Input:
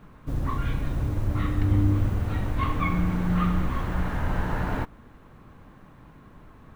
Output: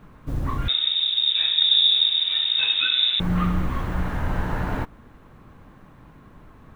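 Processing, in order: 0.68–3.20 s: frequency inversion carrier 3.7 kHz; trim +1.5 dB

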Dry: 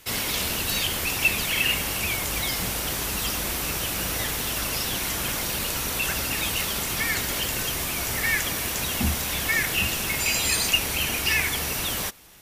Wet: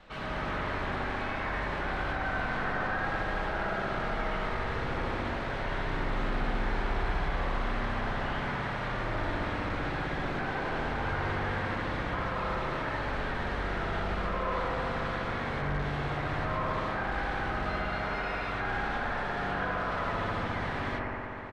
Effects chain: band-stop 460 Hz, Q 12; de-hum 379.2 Hz, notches 26; peak limiter -17.5 dBFS, peak gain reduction 8 dB; harmony voices -12 st -3 dB; hard clipper -32 dBFS, distortion -6 dB; distance through air 130 m; doubling 12 ms -11.5 dB; spring tank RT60 1.9 s, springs 36 ms, chirp 25 ms, DRR -6.5 dB; speed mistake 78 rpm record played at 45 rpm; trim -2.5 dB

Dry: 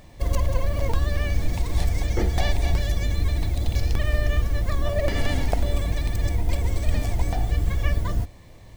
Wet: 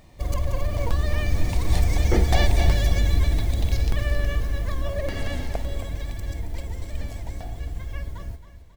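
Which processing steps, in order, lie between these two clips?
Doppler pass-by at 2.41 s, 12 m/s, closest 14 m; on a send: feedback delay 271 ms, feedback 45%, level -12.5 dB; on the sum: trim +3.5 dB

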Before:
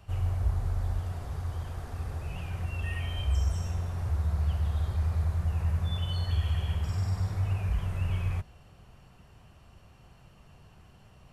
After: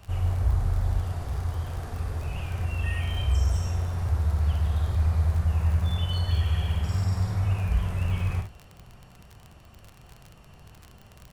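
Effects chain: early reflections 49 ms -7.5 dB, 67 ms -11 dB; crackle 37 per s -37 dBFS; trim +3.5 dB

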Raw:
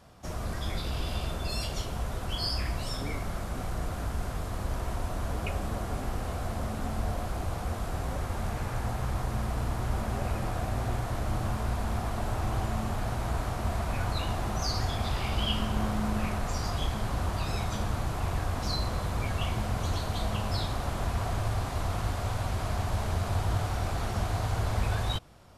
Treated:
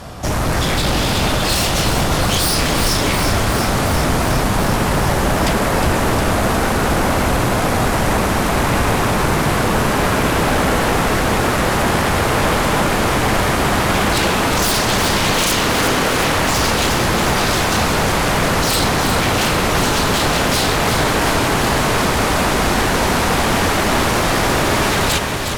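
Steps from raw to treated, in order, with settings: sine folder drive 19 dB, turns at -15 dBFS; echo whose repeats swap between lows and highs 180 ms, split 2.4 kHz, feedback 87%, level -5.5 dB

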